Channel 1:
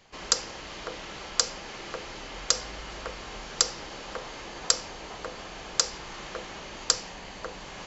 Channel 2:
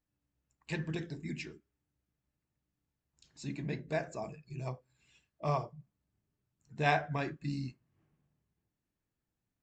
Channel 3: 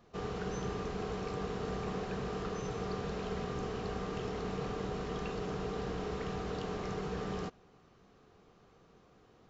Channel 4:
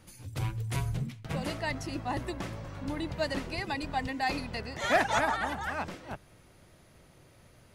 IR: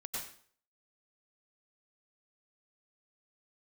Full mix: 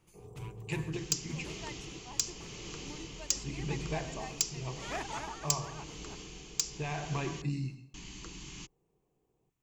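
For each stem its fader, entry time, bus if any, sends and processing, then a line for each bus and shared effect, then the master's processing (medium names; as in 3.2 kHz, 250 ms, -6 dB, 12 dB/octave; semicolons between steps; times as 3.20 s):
-3.5 dB, 0.80 s, muted 7.42–7.94 s, no send, FFT filter 310 Hz 0 dB, 520 Hz -24 dB, 4.7 kHz 0 dB; hard clipper -14 dBFS, distortion -10 dB
-4.0 dB, 0.00 s, send -7.5 dB, peak limiter -26 dBFS, peak gain reduction 10.5 dB
-18.0 dB, 0.00 s, no send, inverse Chebyshev band-stop 2.1–6.1 kHz, stop band 60 dB
-15.5 dB, 0.00 s, no send, none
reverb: on, RT60 0.50 s, pre-delay 88 ms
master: gain riding within 3 dB 0.5 s; rippled EQ curve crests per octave 0.71, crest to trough 7 dB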